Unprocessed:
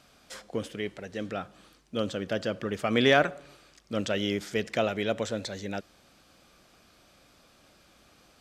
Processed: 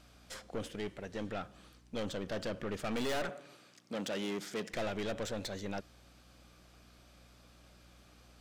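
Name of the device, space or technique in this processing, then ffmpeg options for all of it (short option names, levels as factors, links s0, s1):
valve amplifier with mains hum: -filter_complex "[0:a]aeval=exprs='(tanh(39.8*val(0)+0.55)-tanh(0.55))/39.8':c=same,aeval=exprs='val(0)+0.001*(sin(2*PI*60*n/s)+sin(2*PI*2*60*n/s)/2+sin(2*PI*3*60*n/s)/3+sin(2*PI*4*60*n/s)/4+sin(2*PI*5*60*n/s)/5)':c=same,asettb=1/sr,asplit=3[s0][s1][s2];[s0]atrim=end=3.294[s3];[s1]atrim=start=3.29:end=4.7,asetpts=PTS-STARTPTS,afade=t=in:d=0.004:c=qsin,afade=t=out:st=1.406:d=0.004:c=qsin,highpass=f=150:w=0.5412,highpass=f=150:w=1.3066[s4];[s2]atrim=start=4.696[s5];[s3][s4]acrossfade=d=0.004:c1=hsin:c2=qsin[s6];[s6][s5]acrossfade=d=0.004:c1=qsin:c2=hsin,volume=0.891"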